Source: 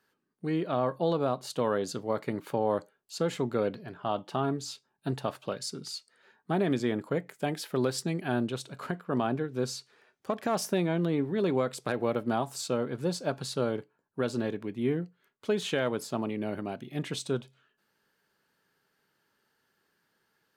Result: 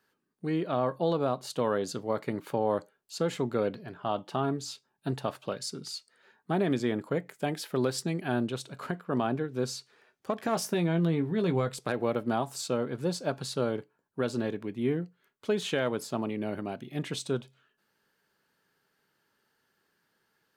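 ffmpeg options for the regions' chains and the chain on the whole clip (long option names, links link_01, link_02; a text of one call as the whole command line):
ffmpeg -i in.wav -filter_complex "[0:a]asettb=1/sr,asplit=3[link_01][link_02][link_03];[link_01]atrim=end=10.384[link_04];[link_02]atrim=start=10.38:end=11.79,asetpts=PTS-STARTPTS,afade=type=in:duration=0.004:curve=qsin,afade=type=out:start_time=1.406:duration=0.004:curve=qsin,bandreject=frequency=580:width=15,asubboost=boost=9:cutoff=150,asplit=2[link_05][link_06];[link_06]adelay=18,volume=-11dB[link_07];[link_05][link_07]amix=inputs=2:normalize=0,atrim=end_sample=62181[link_08];[link_03]atrim=start=11.786[link_09];[link_04][link_08]acrossfade=duration=0.004:curve1=hsin:curve2=qsin[link_10];[link_10][link_09]acrossfade=duration=0.004:curve1=qsin:curve2=hsin" out.wav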